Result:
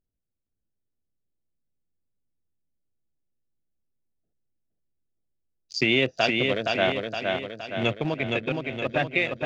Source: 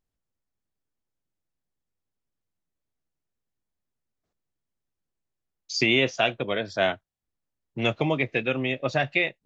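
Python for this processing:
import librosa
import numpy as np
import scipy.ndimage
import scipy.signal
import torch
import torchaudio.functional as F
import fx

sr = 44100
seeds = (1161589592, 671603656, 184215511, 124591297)

y = fx.wiener(x, sr, points=41)
y = fx.level_steps(y, sr, step_db=13, at=(7.93, 8.96))
y = fx.echo_feedback(y, sr, ms=467, feedback_pct=53, wet_db=-3.5)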